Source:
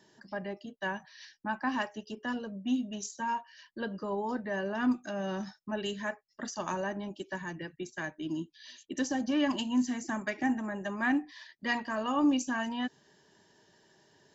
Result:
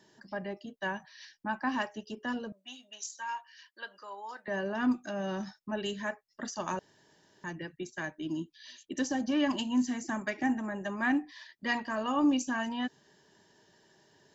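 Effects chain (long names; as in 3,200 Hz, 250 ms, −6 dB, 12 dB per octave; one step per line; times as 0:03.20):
0:02.52–0:04.48: high-pass filter 1,100 Hz 12 dB per octave
0:06.79–0:07.44: fill with room tone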